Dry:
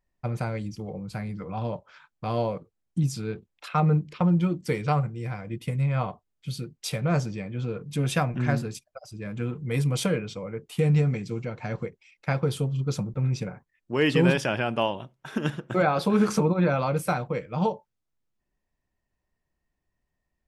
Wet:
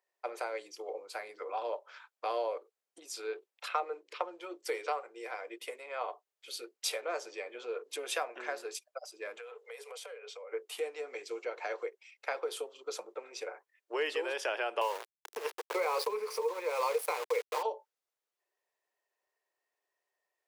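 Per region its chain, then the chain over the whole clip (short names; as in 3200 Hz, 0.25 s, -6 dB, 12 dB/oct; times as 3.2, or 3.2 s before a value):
9.38–10.52 Chebyshev high-pass 410 Hz, order 8 + compressor 8:1, threshold -43 dBFS
14.81–17.63 expander -44 dBFS + ripple EQ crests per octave 0.88, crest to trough 15 dB + sample gate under -31.5 dBFS
whole clip: compressor, threshold -27 dBFS; steep high-pass 390 Hz 48 dB/oct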